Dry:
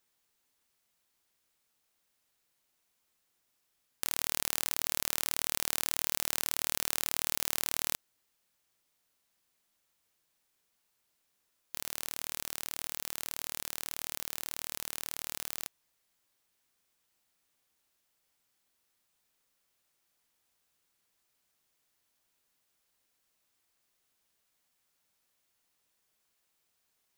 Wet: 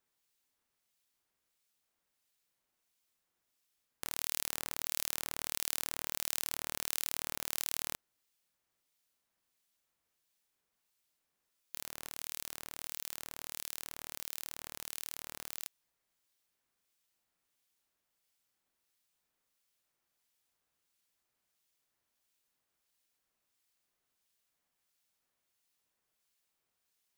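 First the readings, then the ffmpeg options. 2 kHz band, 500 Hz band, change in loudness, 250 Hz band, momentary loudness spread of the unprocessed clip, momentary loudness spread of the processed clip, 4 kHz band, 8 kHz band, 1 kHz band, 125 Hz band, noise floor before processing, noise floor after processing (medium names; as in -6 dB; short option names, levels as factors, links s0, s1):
-5.0 dB, -5.0 dB, -5.0 dB, -5.0 dB, 7 LU, 9 LU, -5.0 dB, -4.5 dB, -5.0 dB, -5.0 dB, -78 dBFS, -85 dBFS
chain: -filter_complex "[0:a]acrossover=split=2100[s0][s1];[s0]aeval=exprs='val(0)*(1-0.5/2+0.5/2*cos(2*PI*1.5*n/s))':c=same[s2];[s1]aeval=exprs='val(0)*(1-0.5/2-0.5/2*cos(2*PI*1.5*n/s))':c=same[s3];[s2][s3]amix=inputs=2:normalize=0,volume=0.75"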